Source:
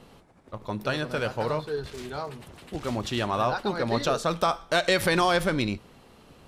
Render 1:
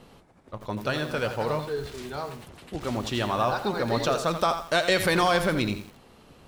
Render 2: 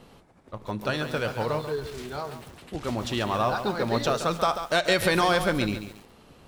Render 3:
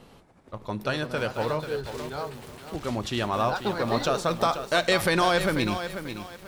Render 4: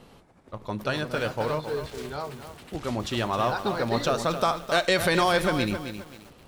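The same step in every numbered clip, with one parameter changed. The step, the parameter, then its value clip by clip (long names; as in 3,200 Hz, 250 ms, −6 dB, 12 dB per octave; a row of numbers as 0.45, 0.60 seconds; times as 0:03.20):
feedback echo at a low word length, delay time: 85, 139, 490, 265 milliseconds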